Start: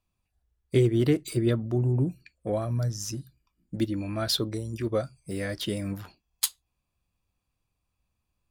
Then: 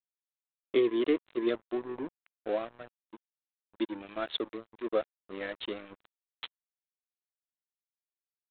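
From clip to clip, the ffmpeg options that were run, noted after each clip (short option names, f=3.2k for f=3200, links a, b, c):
-af "highpass=f=300:w=0.5412,highpass=f=300:w=1.3066,aresample=8000,aeval=exprs='sgn(val(0))*max(abs(val(0))-0.0112,0)':c=same,aresample=44100"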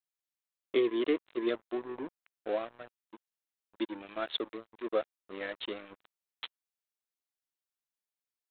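-af "lowshelf=f=260:g=-6"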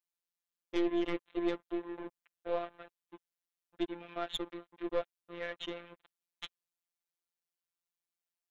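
-af "aeval=exprs='(tanh(20*val(0)+0.45)-tanh(0.45))/20':c=same,afftfilt=real='hypot(re,im)*cos(PI*b)':imag='0':win_size=1024:overlap=0.75,volume=3dB"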